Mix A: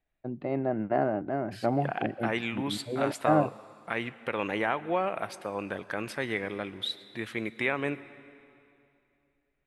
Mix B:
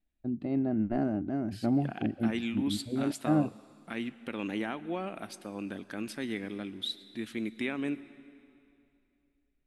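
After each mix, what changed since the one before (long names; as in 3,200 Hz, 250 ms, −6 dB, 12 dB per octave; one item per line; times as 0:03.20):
first voice: remove band-pass filter 180–4,700 Hz
master: add octave-band graphic EQ 125/250/500/1,000/2,000 Hz −9/+8/−9/−9/−7 dB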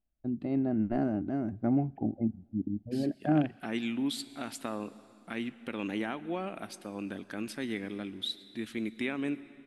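second voice: entry +1.40 s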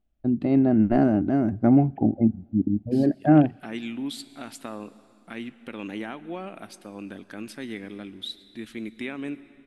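first voice +10.0 dB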